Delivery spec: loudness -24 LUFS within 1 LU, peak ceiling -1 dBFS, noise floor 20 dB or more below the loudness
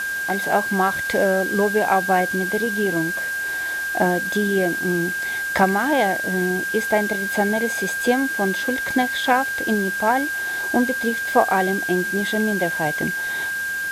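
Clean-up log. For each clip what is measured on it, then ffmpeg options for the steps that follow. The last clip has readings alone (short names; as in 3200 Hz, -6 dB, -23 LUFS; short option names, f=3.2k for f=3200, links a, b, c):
steady tone 1600 Hz; tone level -23 dBFS; noise floor -26 dBFS; noise floor target -41 dBFS; loudness -20.5 LUFS; peak -3.0 dBFS; loudness target -24.0 LUFS
-> -af "bandreject=f=1.6k:w=30"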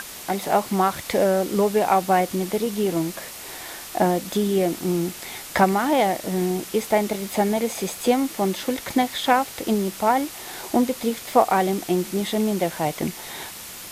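steady tone none; noise floor -38 dBFS; noise floor target -43 dBFS
-> -af "afftdn=nr=6:nf=-38"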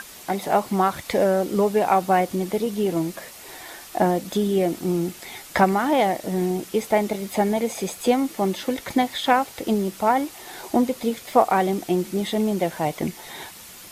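noise floor -43 dBFS; loudness -23.0 LUFS; peak -3.5 dBFS; loudness target -24.0 LUFS
-> -af "volume=-1dB"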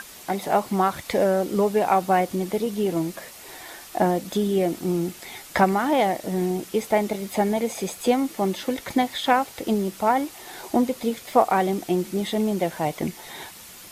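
loudness -24.0 LUFS; peak -4.5 dBFS; noise floor -44 dBFS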